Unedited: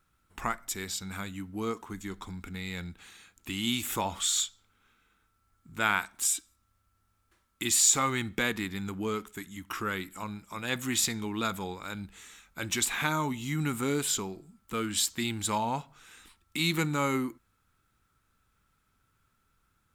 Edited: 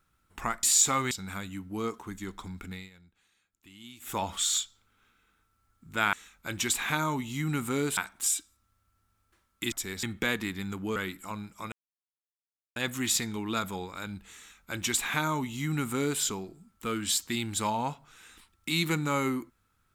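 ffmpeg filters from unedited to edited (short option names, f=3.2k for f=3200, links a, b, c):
-filter_complex "[0:a]asplit=11[a][b][c][d][e][f][g][h][i][j][k];[a]atrim=end=0.632[l];[b]atrim=start=7.708:end=8.192[m];[c]atrim=start=0.938:end=2.73,asetpts=PTS-STARTPTS,afade=t=out:st=1.592:d=0.2:silence=0.11885[n];[d]atrim=start=2.73:end=3.83,asetpts=PTS-STARTPTS,volume=-18.5dB[o];[e]atrim=start=3.83:end=5.962,asetpts=PTS-STARTPTS,afade=t=in:d=0.2:silence=0.11885[p];[f]atrim=start=12.248:end=14.092[q];[g]atrim=start=5.958:end=7.712[r];[h]atrim=start=0.628:end=0.942[s];[i]atrim=start=8.188:end=9.122[t];[j]atrim=start=9.878:end=10.64,asetpts=PTS-STARTPTS,afade=t=out:st=0.758:d=0.004:c=hsin,apad=pad_dur=1.04[u];[k]atrim=start=10.64,asetpts=PTS-STARTPTS,afade=t=in:d=0.004:c=hsin[v];[l][m]acrossfade=d=0.004:c1=hsin:c2=hsin[w];[n][o][p]concat=n=3:v=0:a=1[x];[w][x]acrossfade=d=0.004:c1=hsin:c2=hsin[y];[y][q]acrossfade=d=0.004:c1=hsin:c2=hsin[z];[z][r]acrossfade=d=0.004:c1=hsin:c2=hsin[aa];[aa][s]acrossfade=d=0.004:c1=hsin:c2=hsin[ab];[ab][t]acrossfade=d=0.004:c1=hsin:c2=hsin[ac];[u][v]concat=n=2:v=0:a=1[ad];[ac][ad]acrossfade=d=0.004:c1=hsin:c2=hsin"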